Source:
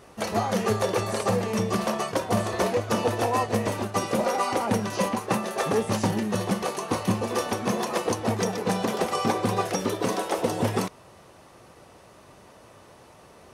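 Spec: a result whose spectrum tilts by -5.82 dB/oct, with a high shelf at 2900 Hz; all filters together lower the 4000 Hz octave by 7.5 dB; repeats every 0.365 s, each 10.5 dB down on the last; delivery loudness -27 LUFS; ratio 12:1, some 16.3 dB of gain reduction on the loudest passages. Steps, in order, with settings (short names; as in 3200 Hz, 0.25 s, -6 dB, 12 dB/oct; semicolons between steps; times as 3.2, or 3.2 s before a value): high shelf 2900 Hz -8.5 dB; bell 4000 Hz -3 dB; compressor 12:1, threshold -37 dBFS; feedback echo 0.365 s, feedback 30%, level -10.5 dB; gain +14.5 dB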